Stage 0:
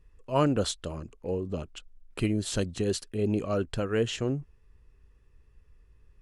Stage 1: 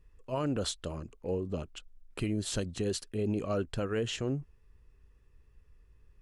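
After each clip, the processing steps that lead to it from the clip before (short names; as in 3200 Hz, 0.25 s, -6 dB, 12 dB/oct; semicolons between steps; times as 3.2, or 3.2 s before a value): limiter -21 dBFS, peak gain reduction 9 dB; gain -2 dB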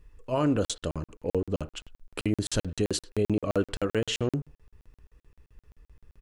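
speakerphone echo 0.1 s, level -20 dB; FDN reverb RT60 0.37 s, low-frequency decay 0.7×, high-frequency decay 0.25×, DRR 12 dB; crackling interface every 0.13 s, samples 2048, zero, from 0.65; gain +6 dB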